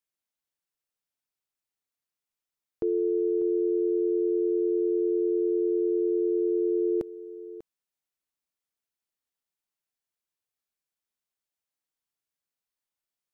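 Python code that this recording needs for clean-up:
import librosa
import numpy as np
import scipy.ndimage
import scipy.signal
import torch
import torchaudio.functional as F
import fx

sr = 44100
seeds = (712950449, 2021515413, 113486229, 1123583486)

y = fx.fix_echo_inverse(x, sr, delay_ms=594, level_db=-15.0)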